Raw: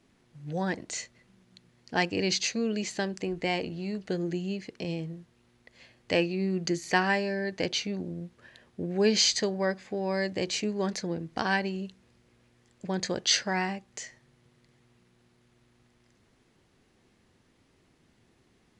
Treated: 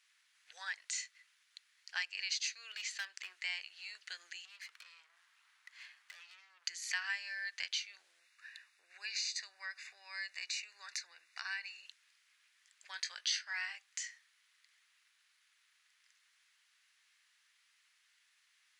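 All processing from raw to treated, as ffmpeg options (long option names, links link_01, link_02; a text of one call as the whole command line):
ffmpeg -i in.wav -filter_complex "[0:a]asettb=1/sr,asplit=3[link_01][link_02][link_03];[link_01]atrim=end=2.714[link_04];[link_02]atrim=start=2.71:end=3.33,asetpts=PTS-STARTPTS,afade=type=in:duration=0.004:curve=qsin,afade=type=out:start_time=0.616:duration=0.004:curve=qsin,highshelf=frequency=6500:gain=-8.5,asoftclip=type=hard:threshold=-25.5dB[link_05];[link_03]atrim=start=3.326[link_06];[link_04][link_05]acrossfade=duration=0.004:curve1=hsin:curve2=qsin[link_07];[link_07][link_06]acrossfade=duration=0.004:curve1=qsin:curve2=hsin,asettb=1/sr,asplit=3[link_08][link_09][link_10];[link_08]atrim=end=4.454[link_11];[link_09]atrim=start=4.45:end=6.67,asetpts=PTS-STARTPTS,afade=type=in:duration=0.004:curve=qsin,afade=type=out:start_time=2.216:duration=0.004:curve=qsin,equalizer=frequency=970:width=0.77:gain=12,acompressor=threshold=-34dB:ratio=12:attack=3.2:release=140:knee=1:detection=peak,aeval=exprs='(tanh(141*val(0)+0.45)-tanh(0.45))/141':channel_layout=same[link_12];[link_10]atrim=start=6.666[link_13];[link_11][link_12]acrossfade=duration=0.004:curve1=hsin:curve2=qsin[link_14];[link_14][link_13]acrossfade=duration=0.004:curve1=qsin:curve2=hsin,asettb=1/sr,asplit=3[link_15][link_16][link_17];[link_15]atrim=end=8.194[link_18];[link_16]atrim=start=8.19:end=11.86,asetpts=PTS-STARTPTS,afade=type=in:duration=0.004:curve=qsin,afade=type=out:start_time=3.666:duration=0.004:curve=qsin,equalizer=frequency=2500:width_type=o:width=1:gain=3,acompressor=threshold=-35dB:ratio=2:attack=3.2:release=140:knee=1:detection=peak,asuperstop=centerf=3200:order=20:qfactor=5.8[link_19];[link_17]atrim=start=11.856[link_20];[link_18][link_19]acrossfade=duration=0.004:curve1=hsin:curve2=qsin[link_21];[link_21][link_20]acrossfade=duration=0.004:curve1=qsin:curve2=hsin,asettb=1/sr,asplit=3[link_22][link_23][link_24];[link_22]atrim=end=12.914[link_25];[link_23]atrim=start=12.91:end=13.75,asetpts=PTS-STARTPTS,afade=type=in:duration=0.004:curve=qsin,afade=type=out:start_time=0.836:duration=0.004:curve=qsin,bandreject=frequency=7100:width=5.8,asplit=2[link_26][link_27];[link_27]adelay=19,volume=-11dB[link_28];[link_26][link_28]amix=inputs=2:normalize=0,atrim=end_sample=37044[link_29];[link_24]atrim=start=13.746[link_30];[link_25][link_29]acrossfade=duration=0.004:curve1=hsin:curve2=qsin[link_31];[link_31][link_30]acrossfade=duration=0.004:curve1=qsin:curve2=hsin,highpass=frequency=1500:width=0.5412,highpass=frequency=1500:width=1.3066,acompressor=threshold=-39dB:ratio=2.5,volume=1dB" out.wav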